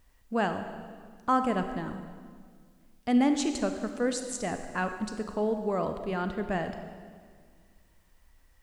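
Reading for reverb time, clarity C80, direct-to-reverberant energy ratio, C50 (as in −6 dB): 1.8 s, 9.0 dB, 7.0 dB, 8.0 dB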